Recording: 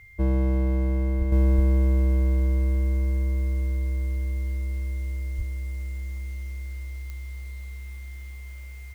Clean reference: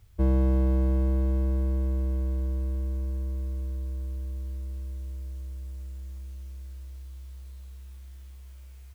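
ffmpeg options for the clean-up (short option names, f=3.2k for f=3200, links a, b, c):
-filter_complex "[0:a]adeclick=t=4,bandreject=f=2.1k:w=30,asplit=3[a][b][c];[a]afade=t=out:st=1.18:d=0.02[d];[b]highpass=f=140:w=0.5412,highpass=f=140:w=1.3066,afade=t=in:st=1.18:d=0.02,afade=t=out:st=1.3:d=0.02[e];[c]afade=t=in:st=1.3:d=0.02[f];[d][e][f]amix=inputs=3:normalize=0,asplit=3[g][h][i];[g]afade=t=out:st=1.55:d=0.02[j];[h]highpass=f=140:w=0.5412,highpass=f=140:w=1.3066,afade=t=in:st=1.55:d=0.02,afade=t=out:st=1.67:d=0.02[k];[i]afade=t=in:st=1.67:d=0.02[l];[j][k][l]amix=inputs=3:normalize=0,asplit=3[m][n][o];[m]afade=t=out:st=5.37:d=0.02[p];[n]highpass=f=140:w=0.5412,highpass=f=140:w=1.3066,afade=t=in:st=5.37:d=0.02,afade=t=out:st=5.49:d=0.02[q];[o]afade=t=in:st=5.49:d=0.02[r];[p][q][r]amix=inputs=3:normalize=0,asetnsamples=n=441:p=0,asendcmd='1.32 volume volume -6.5dB',volume=0dB"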